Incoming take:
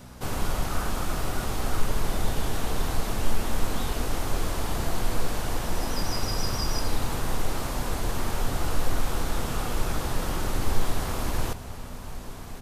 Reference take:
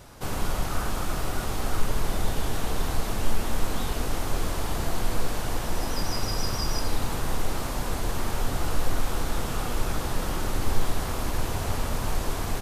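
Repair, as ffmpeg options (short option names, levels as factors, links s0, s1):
-af "bandreject=f=61.4:t=h:w=4,bandreject=f=122.8:t=h:w=4,bandreject=f=184.2:t=h:w=4,bandreject=f=245.6:t=h:w=4,asetnsamples=n=441:p=0,asendcmd='11.53 volume volume 11dB',volume=1"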